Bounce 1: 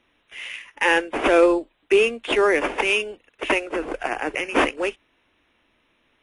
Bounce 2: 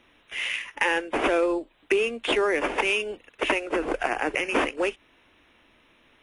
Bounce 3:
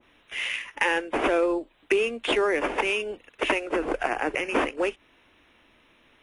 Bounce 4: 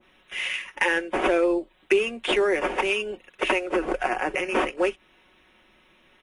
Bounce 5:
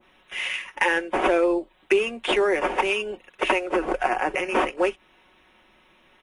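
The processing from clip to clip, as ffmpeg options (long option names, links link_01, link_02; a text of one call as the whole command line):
ffmpeg -i in.wav -af "acompressor=threshold=-28dB:ratio=4,volume=5.5dB" out.wav
ffmpeg -i in.wav -af "adynamicequalizer=threshold=0.0178:dfrequency=1900:dqfactor=0.7:tfrequency=1900:tqfactor=0.7:attack=5:release=100:ratio=0.375:range=2:mode=cutabove:tftype=highshelf" out.wav
ffmpeg -i in.wav -af "aecho=1:1:5.4:0.51" out.wav
ffmpeg -i in.wav -af "equalizer=frequency=880:width=1.5:gain=4" out.wav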